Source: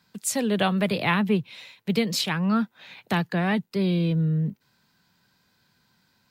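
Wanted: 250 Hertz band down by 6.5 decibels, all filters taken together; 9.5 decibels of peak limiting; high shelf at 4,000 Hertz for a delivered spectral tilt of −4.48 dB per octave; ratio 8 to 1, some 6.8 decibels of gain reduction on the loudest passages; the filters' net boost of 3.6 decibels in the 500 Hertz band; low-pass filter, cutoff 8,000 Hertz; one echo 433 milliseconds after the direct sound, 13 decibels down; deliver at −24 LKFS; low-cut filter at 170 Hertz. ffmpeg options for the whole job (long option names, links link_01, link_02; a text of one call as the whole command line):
ffmpeg -i in.wav -af "highpass=170,lowpass=8000,equalizer=frequency=250:width_type=o:gain=-8.5,equalizer=frequency=500:width_type=o:gain=7,highshelf=frequency=4000:gain=8.5,acompressor=threshold=-24dB:ratio=8,alimiter=limit=-22.5dB:level=0:latency=1,aecho=1:1:433:0.224,volume=8.5dB" out.wav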